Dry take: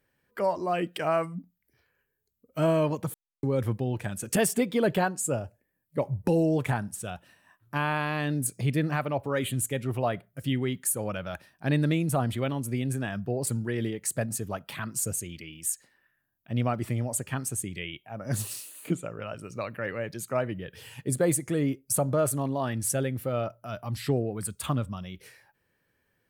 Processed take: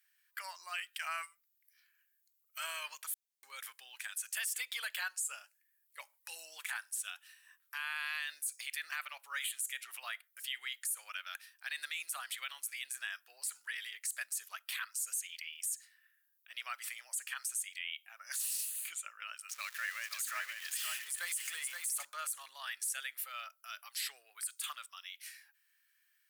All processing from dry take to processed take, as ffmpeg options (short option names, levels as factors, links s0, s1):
-filter_complex "[0:a]asettb=1/sr,asplit=3[s0][s1][s2];[s0]atrim=end=19.494[s3];[s1]atrim=start=19.49:end=22.05,asetpts=PTS-STARTPTS,afade=t=in:d=0.004:c=qsin,afade=t=out:st=2.556:d=0.004:c=qsin,aeval=exprs='val(0)+0.5*0.00891*sgn(val(0))':c=same,aecho=1:1:523:0.501,atrim=end_sample=112896[s4];[s2]atrim=start=22.046[s5];[s3][s4]acrossfade=d=0.004:c1=hsin:c2=qsin[s6];[s6][s5]acrossfade=d=0.004:c1=qsin:c2=hsin,highpass=f=1500:w=0.5412,highpass=f=1500:w=1.3066,highshelf=f=4200:g=8,alimiter=level_in=1.26:limit=0.0631:level=0:latency=1:release=39,volume=0.794,volume=0.891"